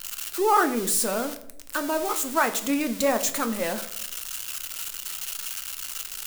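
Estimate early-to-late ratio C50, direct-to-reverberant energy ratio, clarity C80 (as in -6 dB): 13.5 dB, 8.0 dB, 17.0 dB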